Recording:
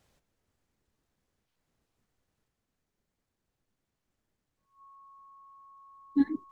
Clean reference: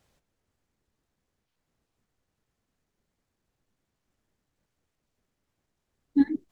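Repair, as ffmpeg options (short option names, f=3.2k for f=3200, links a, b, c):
-af "bandreject=f=1.1k:w=30,asetnsamples=n=441:p=0,asendcmd='2.48 volume volume 3.5dB',volume=0dB"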